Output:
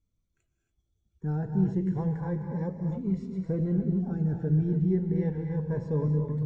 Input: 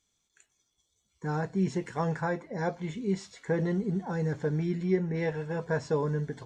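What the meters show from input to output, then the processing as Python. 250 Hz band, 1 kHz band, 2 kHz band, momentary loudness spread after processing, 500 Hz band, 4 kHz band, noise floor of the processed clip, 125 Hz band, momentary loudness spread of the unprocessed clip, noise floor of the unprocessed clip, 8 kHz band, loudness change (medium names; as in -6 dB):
+3.5 dB, -8.5 dB, under -10 dB, 6 LU, -3.5 dB, under -15 dB, -79 dBFS, +5.0 dB, 5 LU, -78 dBFS, under -15 dB, +2.0 dB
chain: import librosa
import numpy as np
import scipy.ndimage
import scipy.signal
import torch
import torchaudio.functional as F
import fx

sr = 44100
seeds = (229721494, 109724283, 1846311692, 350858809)

y = fx.spec_erase(x, sr, start_s=2.67, length_s=0.25, low_hz=1900.0, high_hz=4400.0)
y = fx.tilt_eq(y, sr, slope=-4.5)
y = y + 10.0 ** (-19.0 / 20.0) * np.pad(y, (int(836 * sr / 1000.0), 0))[:len(y)]
y = fx.rev_gated(y, sr, seeds[0], gate_ms=310, shape='rising', drr_db=5.0)
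y = fx.notch_cascade(y, sr, direction='rising', hz=0.31)
y = y * 10.0 ** (-8.5 / 20.0)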